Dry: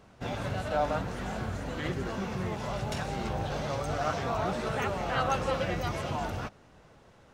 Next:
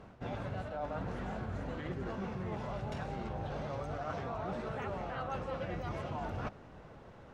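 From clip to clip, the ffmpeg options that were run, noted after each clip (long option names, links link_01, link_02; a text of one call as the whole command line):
ffmpeg -i in.wav -af "lowpass=frequency=1700:poles=1,areverse,acompressor=threshold=-40dB:ratio=10,areverse,volume=4.5dB" out.wav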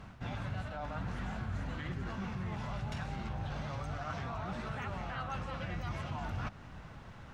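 ffmpeg -i in.wav -filter_complex "[0:a]equalizer=frequency=460:width_type=o:width=1.6:gain=-13,asplit=2[link_01][link_02];[link_02]alimiter=level_in=18dB:limit=-24dB:level=0:latency=1:release=168,volume=-18dB,volume=0.5dB[link_03];[link_01][link_03]amix=inputs=2:normalize=0,volume=1dB" out.wav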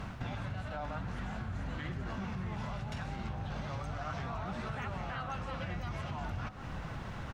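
ffmpeg -i in.wav -filter_complex "[0:a]acompressor=threshold=-45dB:ratio=6,asplit=2[link_01][link_02];[link_02]adelay=1283,volume=-12dB,highshelf=frequency=4000:gain=-28.9[link_03];[link_01][link_03]amix=inputs=2:normalize=0,volume=9dB" out.wav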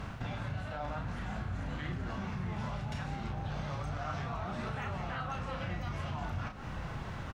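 ffmpeg -i in.wav -filter_complex "[0:a]asplit=2[link_01][link_02];[link_02]adelay=34,volume=-6dB[link_03];[link_01][link_03]amix=inputs=2:normalize=0" out.wav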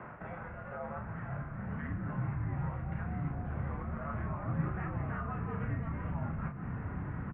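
ffmpeg -i in.wav -af "highpass=frequency=220:width_type=q:width=0.5412,highpass=frequency=220:width_type=q:width=1.307,lowpass=frequency=2100:width_type=q:width=0.5176,lowpass=frequency=2100:width_type=q:width=0.7071,lowpass=frequency=2100:width_type=q:width=1.932,afreqshift=-71,asubboost=boost=9:cutoff=190" out.wav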